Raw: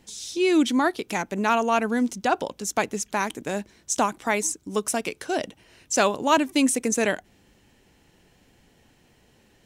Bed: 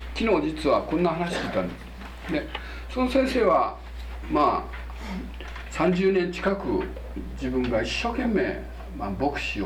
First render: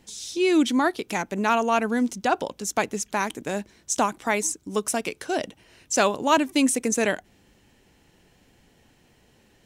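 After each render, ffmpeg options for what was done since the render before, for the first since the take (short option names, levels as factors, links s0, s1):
-af anull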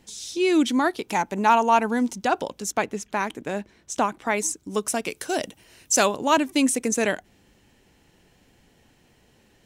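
-filter_complex "[0:a]asettb=1/sr,asplit=3[s0][s1][s2];[s0]atrim=end=1.004[s3];[s1]atrim=start=1:end=2.21,asetpts=PTS-STARTPTS,afade=t=in:d=0.004:c=qsin,afade=t=out:st=1.206:d=0.004:c=qsin,equalizer=f=890:t=o:w=0.31:g=9[s4];[s2]atrim=start=2.206[s5];[s3][s4]acrossfade=d=0.004:c1=hsin:c2=qsin[s6];[s6][s5]acrossfade=d=0.004:c1=qsin:c2=hsin,asettb=1/sr,asplit=3[s7][s8][s9];[s7]atrim=end=2.724[s10];[s8]atrim=start=2.72:end=4.38,asetpts=PTS-STARTPTS,afade=t=in:d=0.004:c=qsin,afade=t=out:st=1.656:d=0.004:c=qsin,bass=f=250:g=-1,treble=f=4000:g=-8[s11];[s9]atrim=start=4.376[s12];[s10][s11]acrossfade=d=0.004:c1=hsin:c2=qsin[s13];[s13][s12]acrossfade=d=0.004:c1=qsin:c2=hsin,asettb=1/sr,asplit=3[s14][s15][s16];[s14]atrim=end=5.094[s17];[s15]atrim=start=5.09:end=6.06,asetpts=PTS-STARTPTS,afade=t=in:d=0.004:c=qsin,afade=t=out:st=0.966:d=0.004:c=qsin,highshelf=f=7000:g=12[s18];[s16]atrim=start=6.056[s19];[s17][s18]acrossfade=d=0.004:c1=hsin:c2=qsin[s20];[s20][s19]acrossfade=d=0.004:c1=qsin:c2=hsin"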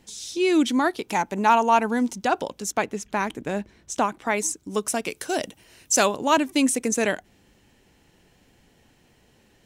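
-filter_complex "[0:a]asettb=1/sr,asplit=3[s0][s1][s2];[s0]atrim=end=3.044[s3];[s1]atrim=start=3.04:end=3.94,asetpts=PTS-STARTPTS,afade=t=in:d=0.004:c=qsin,afade=t=out:st=0.896:d=0.004:c=qsin,lowshelf=f=160:g=7.5[s4];[s2]atrim=start=3.936[s5];[s3][s4]acrossfade=d=0.004:c1=hsin:c2=qsin[s6];[s6][s5]acrossfade=d=0.004:c1=qsin:c2=hsin"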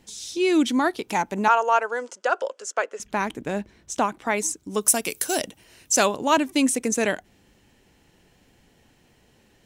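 -filter_complex "[0:a]asettb=1/sr,asplit=3[s0][s1][s2];[s0]atrim=end=1.484[s3];[s1]atrim=start=1.48:end=3,asetpts=PTS-STARTPTS,afade=t=in:d=0.004:c=qsin,afade=t=out:st=1.516:d=0.004:c=qsin,highpass=f=460:w=0.5412,highpass=f=460:w=1.3066,equalizer=f=530:t=q:w=4:g=7,equalizer=f=810:t=q:w=4:g=-7,equalizer=f=1400:t=q:w=4:g=6,equalizer=f=2300:t=q:w=4:g=-5,equalizer=f=3800:t=q:w=4:g=-9,equalizer=f=5800:t=q:w=4:g=-4,lowpass=f=7900:w=0.5412,lowpass=f=7900:w=1.3066[s4];[s2]atrim=start=2.996[s5];[s3][s4]acrossfade=d=0.004:c1=hsin:c2=qsin[s6];[s6][s5]acrossfade=d=0.004:c1=qsin:c2=hsin,asettb=1/sr,asplit=3[s7][s8][s9];[s7]atrim=end=4.814[s10];[s8]atrim=start=4.81:end=5.42,asetpts=PTS-STARTPTS,afade=t=in:d=0.004:c=qsin,afade=t=out:st=0.606:d=0.004:c=qsin,aemphasis=mode=production:type=50fm[s11];[s9]atrim=start=5.416[s12];[s10][s11]acrossfade=d=0.004:c1=hsin:c2=qsin[s13];[s13][s12]acrossfade=d=0.004:c1=qsin:c2=hsin"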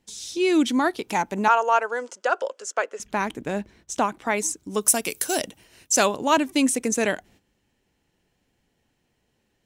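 -af "agate=range=0.251:threshold=0.00251:ratio=16:detection=peak"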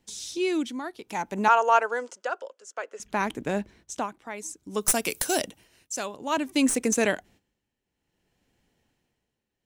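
-filter_complex "[0:a]tremolo=f=0.58:d=0.78,acrossover=split=740|6800[s0][s1][s2];[s2]aeval=exprs='clip(val(0),-1,0.0355)':c=same[s3];[s0][s1][s3]amix=inputs=3:normalize=0"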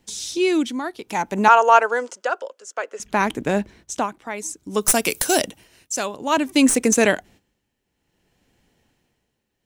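-af "volume=2.24,alimiter=limit=0.891:level=0:latency=1"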